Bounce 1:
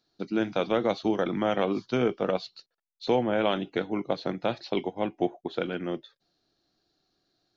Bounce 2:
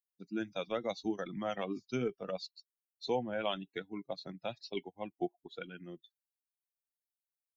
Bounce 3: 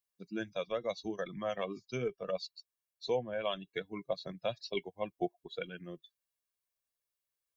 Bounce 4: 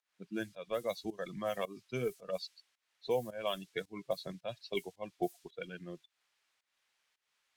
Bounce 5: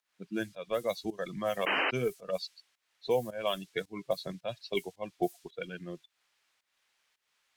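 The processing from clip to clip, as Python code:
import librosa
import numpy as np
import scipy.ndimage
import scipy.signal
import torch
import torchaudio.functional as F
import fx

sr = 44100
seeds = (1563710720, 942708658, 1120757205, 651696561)

y1 = fx.bin_expand(x, sr, power=2.0)
y1 = fx.high_shelf(y1, sr, hz=4800.0, db=12.0)
y1 = y1 * librosa.db_to_amplitude(-6.0)
y2 = y1 + 0.51 * np.pad(y1, (int(1.8 * sr / 1000.0), 0))[:len(y1)]
y2 = fx.rider(y2, sr, range_db=3, speed_s=0.5)
y3 = fx.dmg_noise_colour(y2, sr, seeds[0], colour='violet', level_db=-53.0)
y3 = fx.volume_shaper(y3, sr, bpm=109, per_beat=1, depth_db=-17, release_ms=234.0, shape='fast start')
y3 = fx.env_lowpass(y3, sr, base_hz=1600.0, full_db=-30.5)
y4 = fx.spec_paint(y3, sr, seeds[1], shape='noise', start_s=1.66, length_s=0.25, low_hz=260.0, high_hz=3100.0, level_db=-33.0)
y4 = y4 * librosa.db_to_amplitude(4.0)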